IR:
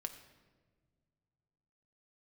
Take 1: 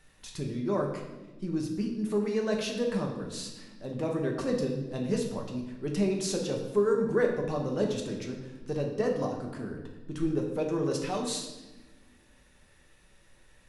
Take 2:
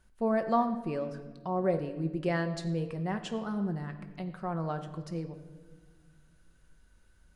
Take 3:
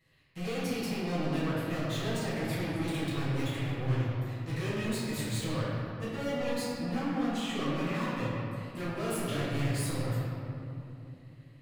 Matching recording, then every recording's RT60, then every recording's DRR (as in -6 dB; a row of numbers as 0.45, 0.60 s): 2; 1.2 s, not exponential, 2.9 s; 0.0, 6.5, -11.5 dB